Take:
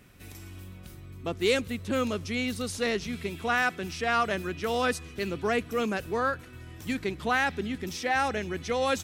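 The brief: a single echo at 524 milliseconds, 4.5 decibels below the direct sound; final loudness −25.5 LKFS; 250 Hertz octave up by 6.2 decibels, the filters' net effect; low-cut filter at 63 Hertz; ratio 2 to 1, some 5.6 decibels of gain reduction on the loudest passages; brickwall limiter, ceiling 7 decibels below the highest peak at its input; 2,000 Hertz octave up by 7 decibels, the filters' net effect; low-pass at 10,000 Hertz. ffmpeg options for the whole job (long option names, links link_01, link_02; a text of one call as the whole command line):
ffmpeg -i in.wav -af "highpass=63,lowpass=10000,equalizer=frequency=250:width_type=o:gain=7,equalizer=frequency=2000:width_type=o:gain=9,acompressor=threshold=-26dB:ratio=2,alimiter=limit=-20dB:level=0:latency=1,aecho=1:1:524:0.596,volume=4dB" out.wav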